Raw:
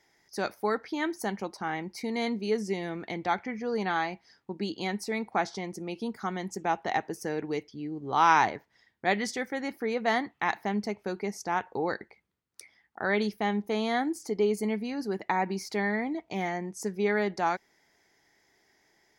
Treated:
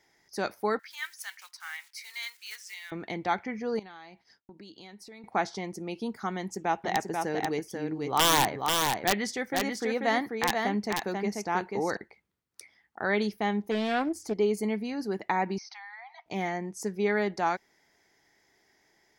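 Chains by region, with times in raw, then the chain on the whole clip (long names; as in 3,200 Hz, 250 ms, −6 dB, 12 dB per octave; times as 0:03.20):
0:00.79–0:02.92: one scale factor per block 5 bits + high-pass filter 1,500 Hz 24 dB per octave
0:03.79–0:05.24: downward expander −57 dBFS + dynamic equaliser 3,900 Hz, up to +6 dB, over −53 dBFS, Q 1.7 + downward compressor 4 to 1, threshold −48 dBFS
0:06.35–0:11.97: wrap-around overflow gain 14.5 dB + single-tap delay 488 ms −4 dB
0:13.71–0:14.34: parametric band 81 Hz +11 dB 0.63 octaves + highs frequency-modulated by the lows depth 0.26 ms
0:15.58–0:16.26: linear-phase brick-wall band-pass 680–6,400 Hz + downward compressor 5 to 1, threshold −43 dBFS
whole clip: no processing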